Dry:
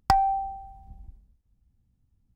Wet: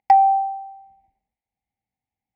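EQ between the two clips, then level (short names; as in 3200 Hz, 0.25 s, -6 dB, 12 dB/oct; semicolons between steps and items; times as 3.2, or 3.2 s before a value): double band-pass 1300 Hz, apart 1.4 oct; +9.0 dB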